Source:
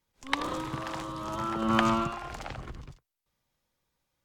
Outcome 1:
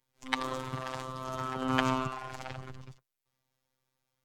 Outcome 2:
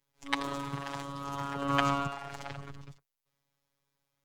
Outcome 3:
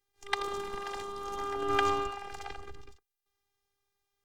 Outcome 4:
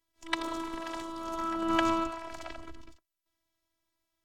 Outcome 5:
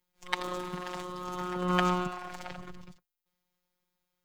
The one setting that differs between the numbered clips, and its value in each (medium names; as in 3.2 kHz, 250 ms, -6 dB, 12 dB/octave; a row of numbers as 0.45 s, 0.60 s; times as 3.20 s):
robot voice, frequency: 130 Hz, 140 Hz, 400 Hz, 330 Hz, 180 Hz